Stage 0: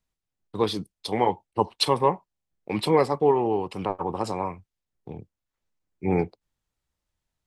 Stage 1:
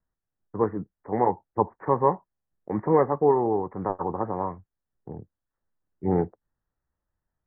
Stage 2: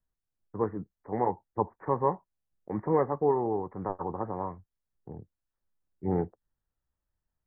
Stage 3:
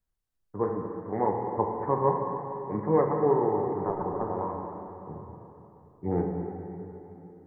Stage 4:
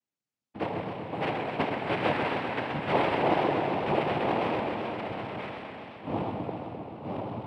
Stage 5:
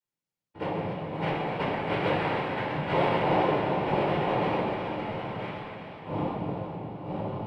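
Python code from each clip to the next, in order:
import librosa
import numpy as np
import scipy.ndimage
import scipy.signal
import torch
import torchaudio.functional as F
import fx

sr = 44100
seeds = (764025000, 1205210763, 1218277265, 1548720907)

y1 = scipy.signal.sosfilt(scipy.signal.butter(16, 1900.0, 'lowpass', fs=sr, output='sos'), x)
y2 = fx.low_shelf(y1, sr, hz=75.0, db=6.0)
y2 = F.gain(torch.from_numpy(y2), -5.5).numpy()
y3 = fx.rev_plate(y2, sr, seeds[0], rt60_s=3.3, hf_ratio=0.95, predelay_ms=0, drr_db=0.5)
y4 = y3 + 10.0 ** (-3.5 / 20.0) * np.pad(y3, (int(979 * sr / 1000.0), 0))[:len(y3)]
y4 = fx.noise_vocoder(y4, sr, seeds[1], bands=4)
y4 = fx.echo_warbled(y4, sr, ms=130, feedback_pct=76, rate_hz=2.8, cents=120, wet_db=-7.0)
y4 = F.gain(torch.from_numpy(y4), -3.5).numpy()
y5 = fx.room_shoebox(y4, sr, seeds[2], volume_m3=760.0, walls='furnished', distance_m=4.6)
y5 = F.gain(torch.from_numpy(y5), -6.0).numpy()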